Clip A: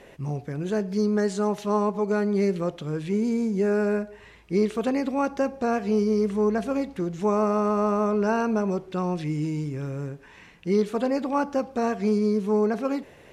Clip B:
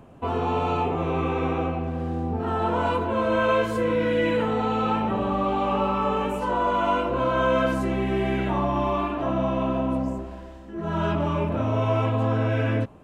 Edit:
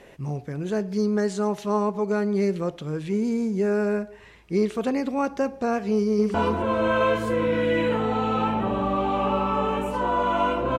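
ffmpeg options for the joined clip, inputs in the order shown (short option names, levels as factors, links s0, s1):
-filter_complex "[0:a]apad=whole_dur=10.78,atrim=end=10.78,atrim=end=6.342[s0];[1:a]atrim=start=2.818:end=7.26[s1];[s0][s1]acrossfade=d=0.004:c1=hsin:c2=hsin,asplit=2[s2][s3];[s3]afade=t=in:st=5.9:d=0.01,afade=t=out:st=6.34:d=0.01,aecho=0:1:280|560|840:0.446684|0.0670025|0.0100504[s4];[s2][s4]amix=inputs=2:normalize=0"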